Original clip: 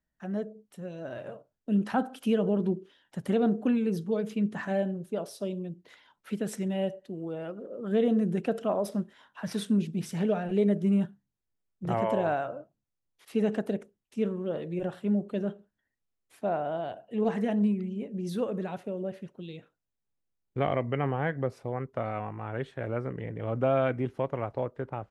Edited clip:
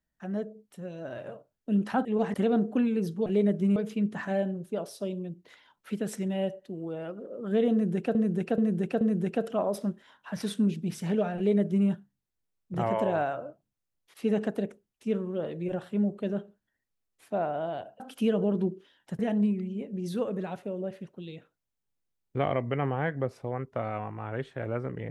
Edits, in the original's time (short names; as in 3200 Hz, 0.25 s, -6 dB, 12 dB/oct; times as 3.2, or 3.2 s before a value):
2.05–3.24 swap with 17.11–17.4
8.12–8.55 loop, 4 plays
10.48–10.98 copy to 4.16